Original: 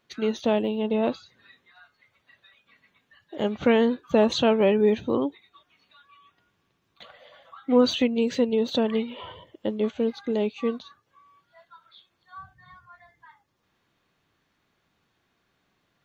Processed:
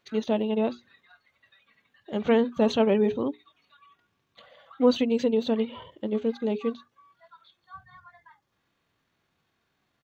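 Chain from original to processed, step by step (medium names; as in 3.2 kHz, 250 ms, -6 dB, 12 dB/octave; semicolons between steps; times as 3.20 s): hum notches 60/120/180/240/300/360/420 Hz; tempo 1.6×; harmonic-percussive split percussive -5 dB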